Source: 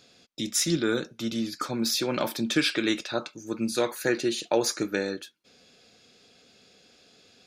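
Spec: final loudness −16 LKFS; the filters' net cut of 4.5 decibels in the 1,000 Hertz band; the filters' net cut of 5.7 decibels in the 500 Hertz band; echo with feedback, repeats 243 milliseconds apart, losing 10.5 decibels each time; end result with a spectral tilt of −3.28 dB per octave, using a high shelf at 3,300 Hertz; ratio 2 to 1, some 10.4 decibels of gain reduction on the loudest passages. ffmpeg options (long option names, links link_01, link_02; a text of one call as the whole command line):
ffmpeg -i in.wav -af "equalizer=frequency=500:width_type=o:gain=-7,equalizer=frequency=1000:width_type=o:gain=-4.5,highshelf=frequency=3300:gain=4.5,acompressor=threshold=-39dB:ratio=2,aecho=1:1:243|486|729:0.299|0.0896|0.0269,volume=20dB" out.wav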